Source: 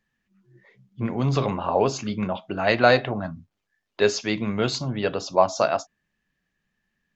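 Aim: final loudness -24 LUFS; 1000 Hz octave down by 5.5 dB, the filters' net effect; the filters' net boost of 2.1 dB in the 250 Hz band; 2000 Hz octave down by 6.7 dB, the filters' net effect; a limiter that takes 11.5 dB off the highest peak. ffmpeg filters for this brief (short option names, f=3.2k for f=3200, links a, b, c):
-af "equalizer=f=250:t=o:g=3,equalizer=f=1k:t=o:g=-7,equalizer=f=2k:t=o:g=-6.5,volume=5dB,alimiter=limit=-13dB:level=0:latency=1"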